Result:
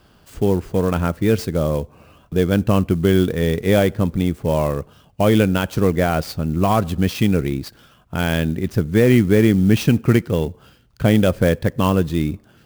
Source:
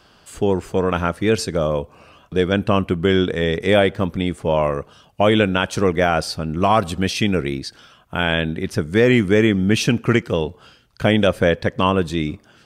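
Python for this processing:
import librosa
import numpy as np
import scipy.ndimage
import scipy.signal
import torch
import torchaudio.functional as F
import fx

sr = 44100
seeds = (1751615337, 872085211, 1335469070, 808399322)

y = fx.low_shelf(x, sr, hz=350.0, db=10.0)
y = fx.clock_jitter(y, sr, seeds[0], jitter_ms=0.022)
y = F.gain(torch.from_numpy(y), -4.5).numpy()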